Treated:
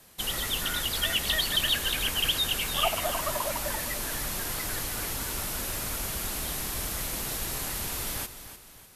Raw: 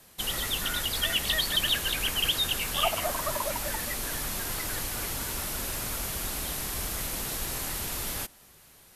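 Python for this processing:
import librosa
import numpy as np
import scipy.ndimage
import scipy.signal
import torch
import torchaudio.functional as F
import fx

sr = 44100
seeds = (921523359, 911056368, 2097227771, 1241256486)

y = fx.dmg_crackle(x, sr, seeds[0], per_s=560.0, level_db=-48.0, at=(6.26, 7.62), fade=0.02)
y = fx.echo_feedback(y, sr, ms=300, feedback_pct=39, wet_db=-12)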